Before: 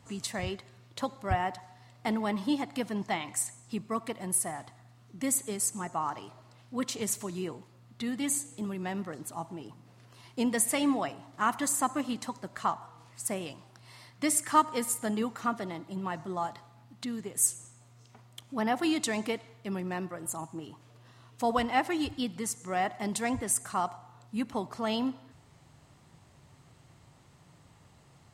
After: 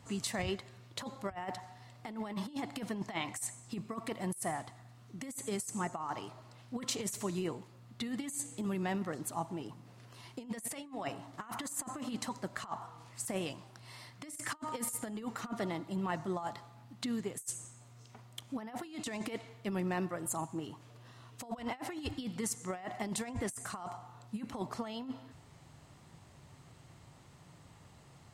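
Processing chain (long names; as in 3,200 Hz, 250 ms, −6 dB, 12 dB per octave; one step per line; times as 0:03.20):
compressor whose output falls as the input rises −34 dBFS, ratio −0.5
level −3 dB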